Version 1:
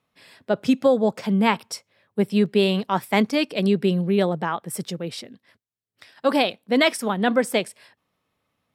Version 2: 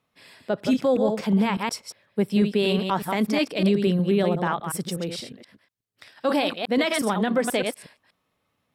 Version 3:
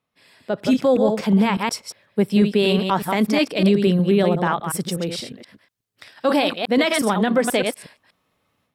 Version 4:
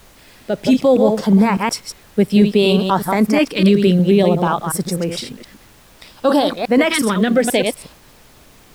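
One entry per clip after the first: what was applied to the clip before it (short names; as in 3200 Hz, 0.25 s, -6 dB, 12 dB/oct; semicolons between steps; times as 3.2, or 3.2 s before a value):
reverse delay 0.121 s, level -7 dB; limiter -12.5 dBFS, peak gain reduction 8.5 dB
AGC gain up to 10.5 dB; gain -5 dB
LFO notch saw up 0.58 Hz 590–4200 Hz; added noise pink -51 dBFS; gain +4.5 dB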